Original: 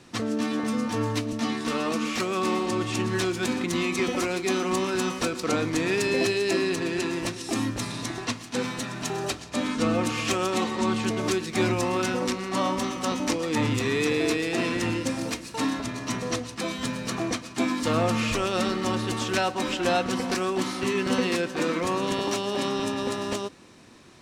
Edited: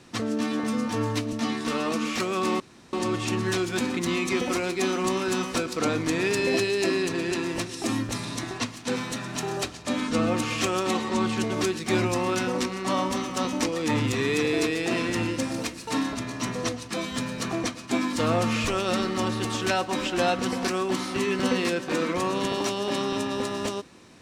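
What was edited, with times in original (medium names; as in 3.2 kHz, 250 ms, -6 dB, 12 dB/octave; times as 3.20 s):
2.60 s: insert room tone 0.33 s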